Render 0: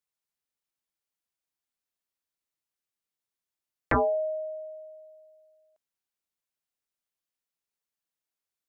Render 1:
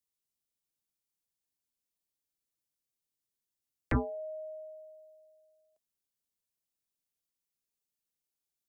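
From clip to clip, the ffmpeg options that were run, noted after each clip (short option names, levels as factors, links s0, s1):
-filter_complex "[0:a]equalizer=f=1400:t=o:w=2.4:g=-11.5,bandreject=f=650:w=15,acrossover=split=200|310|1100[s0][s1][s2][s3];[s2]acompressor=threshold=0.00708:ratio=6[s4];[s0][s1][s4][s3]amix=inputs=4:normalize=0,volume=1.26"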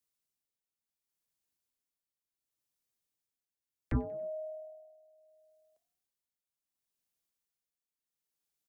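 -filter_complex "[0:a]acrossover=split=340[s0][s1];[s1]alimiter=level_in=2.66:limit=0.0631:level=0:latency=1:release=358,volume=0.376[s2];[s0][s2]amix=inputs=2:normalize=0,tremolo=f=0.7:d=0.65,asplit=4[s3][s4][s5][s6];[s4]adelay=93,afreqshift=39,volume=0.0708[s7];[s5]adelay=186,afreqshift=78,volume=0.0367[s8];[s6]adelay=279,afreqshift=117,volume=0.0191[s9];[s3][s7][s8][s9]amix=inputs=4:normalize=0,volume=1.26"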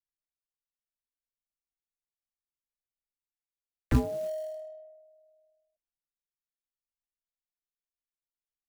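-af "acrusher=bits=5:mode=log:mix=0:aa=0.000001,anlmdn=0.000158,tremolo=f=1:d=0.3,volume=2.24"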